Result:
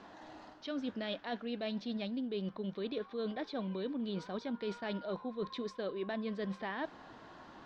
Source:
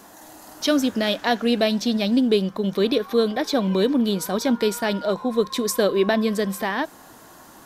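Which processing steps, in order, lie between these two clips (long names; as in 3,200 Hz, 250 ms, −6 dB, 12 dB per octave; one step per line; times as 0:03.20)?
low-pass filter 4,100 Hz 24 dB per octave
reversed playback
downward compressor 12 to 1, threshold −29 dBFS, peak gain reduction 15.5 dB
reversed playback
level −6 dB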